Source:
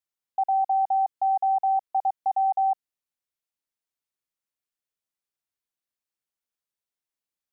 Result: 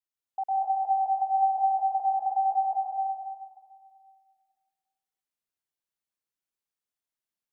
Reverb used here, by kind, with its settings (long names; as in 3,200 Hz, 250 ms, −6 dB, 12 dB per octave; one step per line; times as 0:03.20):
dense smooth reverb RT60 2 s, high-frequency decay 0.65×, pre-delay 115 ms, DRR −3.5 dB
level −7 dB